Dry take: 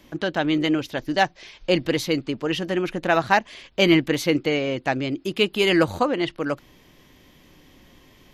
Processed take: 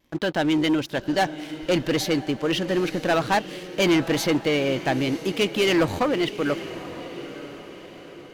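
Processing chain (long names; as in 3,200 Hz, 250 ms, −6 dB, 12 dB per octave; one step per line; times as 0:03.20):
leveller curve on the samples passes 3
feedback delay with all-pass diffusion 926 ms, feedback 46%, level −13 dB
pitch vibrato 0.53 Hz 13 cents
level −9 dB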